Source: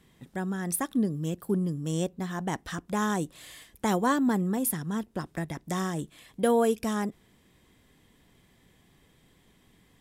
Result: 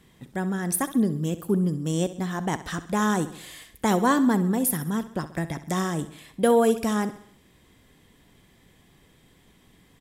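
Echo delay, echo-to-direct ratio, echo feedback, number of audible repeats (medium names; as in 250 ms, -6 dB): 66 ms, -13.0 dB, 51%, 4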